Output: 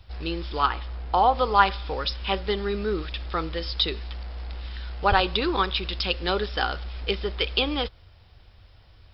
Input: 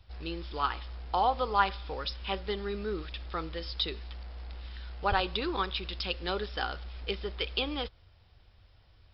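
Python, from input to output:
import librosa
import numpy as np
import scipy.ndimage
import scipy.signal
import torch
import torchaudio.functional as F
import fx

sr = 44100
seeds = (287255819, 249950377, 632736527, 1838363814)

y = fx.high_shelf(x, sr, hz=3600.0, db=-8.5, at=(0.66, 1.35))
y = F.gain(torch.from_numpy(y), 7.5).numpy()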